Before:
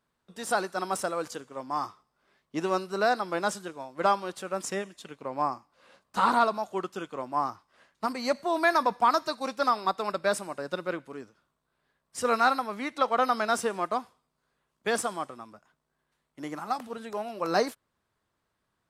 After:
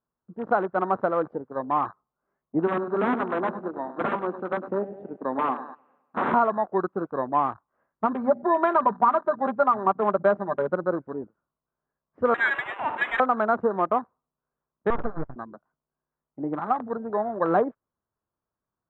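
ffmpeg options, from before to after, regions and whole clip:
-filter_complex "[0:a]asettb=1/sr,asplit=3[s0][s1][s2];[s0]atrim=end=2.674[s3];[s1]atrim=start=2.67:end=6.34,asetpts=PTS-STARTPTS,afade=t=in:d=0.004:c=qsin,afade=t=out:st=3.666:d=0.004:c=qsin,aeval=exprs='(mod(11.9*val(0)+1,2)-1)/11.9':c=same,highpass=200,equalizer=f=250:t=q:w=4:g=5,equalizer=f=540:t=q:w=4:g=-3,equalizer=f=2700:t=q:w=4:g=4,lowpass=f=9200:w=0.5412,lowpass=f=9200:w=1.3066,aecho=1:1:102|204|306|408|510|612|714:0.251|0.148|0.0874|0.0516|0.0304|0.018|0.0106,atrim=end_sample=161847[s4];[s2]atrim=start=6.336[s5];[s3][s4]acrossfade=d=0.004:c1=hsin:c2=qsin[s6];[s6][s5]acrossfade=d=0.004:c1=qsin:c2=hsin,asettb=1/sr,asplit=3[s7][s8][s9];[s7]atrim=end=8.124[s10];[s8]atrim=start=8.12:end=10.72,asetpts=PTS-STARTPTS,afade=t=in:d=0.004:c=qsin,afade=t=out:st=2.596:d=0.004:c=qsin,bandreject=f=60:t=h:w=6,bandreject=f=120:t=h:w=6,bandreject=f=180:t=h:w=6,bandreject=f=240:t=h:w=6,bandreject=f=300:t=h:w=6,aecho=1:1:5:0.68,atrim=end_sample=114660,acrusher=bits=5:mode=log:mix=0:aa=0.000001[s11];[s9]atrim=start=10.716[s12];[s10][s11]acrossfade=d=0.004:c1=hsin:c2=qsin[s13];[s13][s12]acrossfade=d=0.004:c1=qsin:c2=hsin,asettb=1/sr,asplit=3[s14][s15][s16];[s14]atrim=end=12.344[s17];[s15]atrim=start=12.34:end=13.2,asetpts=PTS-STARTPTS,afade=t=in:d=0.004:c=qsin,afade=t=out:st=0.856:d=0.004:c=qsin,aeval=exprs='val(0)+0.5*0.0398*sgn(val(0))':c=same,lowpass=f=2600:t=q:w=0.5098,lowpass=f=2600:t=q:w=0.6013,lowpass=f=2600:t=q:w=0.9,lowpass=f=2600:t=q:w=2.563,afreqshift=-3000[s18];[s16]atrim=start=13.196[s19];[s17][s18]acrossfade=d=0.004:c1=hsin:c2=qsin[s20];[s20][s19]acrossfade=d=0.004:c1=qsin:c2=hsin,asettb=1/sr,asplit=3[s21][s22][s23];[s21]atrim=end=14.904[s24];[s22]atrim=start=14.9:end=15.36,asetpts=PTS-STARTPTS,afade=t=in:d=0.004:c=qsin,afade=t=out:st=0.456:d=0.004:c=qsin,highpass=88,lowshelf=f=400:g=-5.5,aeval=exprs='abs(val(0))':c=same[s25];[s23]atrim=start=15.356[s26];[s24][s25]acrossfade=d=0.004:c1=hsin:c2=qsin[s27];[s27][s26]acrossfade=d=0.004:c1=qsin:c2=hsin,lowpass=f=1400:w=0.5412,lowpass=f=1400:w=1.3066,acompressor=threshold=0.0501:ratio=3,afwtdn=0.00794,volume=2.51"

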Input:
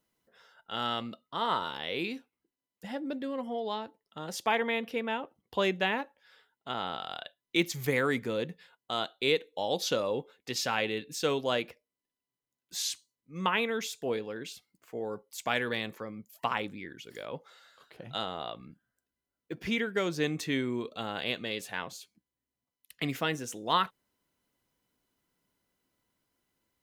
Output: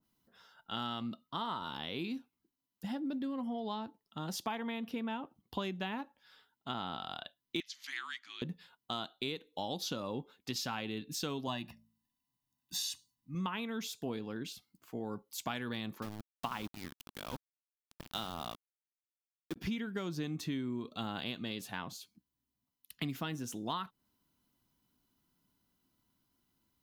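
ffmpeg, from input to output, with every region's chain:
-filter_complex "[0:a]asettb=1/sr,asplit=3[s0][s1][s2];[s0]atrim=end=7.604[s3];[s1]atrim=start=7.6:end=8.42,asetpts=PTS-STARTPTS,afade=t=in:d=0.004:c=qsin,afade=t=out:st=0.816:d=0.004:c=qsin,afreqshift=-170,asuperpass=centerf=3400:order=4:qfactor=0.8[s4];[s2]atrim=start=8.416[s5];[s3][s4]acrossfade=d=0.004:c1=hsin:c2=qsin[s6];[s6][s5]acrossfade=d=0.004:c1=qsin:c2=hsin,asettb=1/sr,asplit=3[s7][s8][s9];[s7]atrim=end=11.474[s10];[s8]atrim=start=11.47:end=13.35,asetpts=PTS-STARTPTS,afade=t=in:d=0.004:c=qsin,afade=t=out:st=1.876:d=0.004:c=qsin,aecho=1:1:1.1:0.88,atrim=end_sample=82908,bandreject=f=55.73:t=h:w=4,bandreject=f=111.46:t=h:w=4,bandreject=f=167.19:t=h:w=4,bandreject=f=222.92:t=h:w=4[s11];[s9]atrim=start=13.346[s12];[s10][s11]acrossfade=d=0.004:c1=hsin:c2=qsin[s13];[s13][s12]acrossfade=d=0.004:c1=qsin:c2=hsin,asettb=1/sr,asplit=3[s14][s15][s16];[s14]atrim=end=16.024[s17];[s15]atrim=start=16.02:end=19.56,asetpts=PTS-STARTPTS,afade=t=in:d=0.004:c=qsin,afade=t=out:st=3.536:d=0.004:c=qsin,bandreject=f=50:t=h:w=6,bandreject=f=100:t=h:w=6,bandreject=f=150:t=h:w=6,bandreject=f=200:t=h:w=6,aeval=exprs='val(0)*gte(abs(val(0)),0.0119)':c=same[s18];[s16]atrim=start=19.556[s19];[s17][s18]acrossfade=d=0.004:c1=hsin:c2=qsin[s20];[s20][s19]acrossfade=d=0.004:c1=qsin:c2=hsin,equalizer=f=250:t=o:w=1:g=3,equalizer=f=500:t=o:w=1:g=-12,equalizer=f=2000:t=o:w=1:g=-9,equalizer=f=8000:t=o:w=1:g=-6,acompressor=threshold=0.0126:ratio=6,adynamicequalizer=threshold=0.002:dfrequency=1600:dqfactor=0.7:tfrequency=1600:tqfactor=0.7:attack=5:release=100:ratio=0.375:range=1.5:mode=cutabove:tftype=highshelf,volume=1.58"

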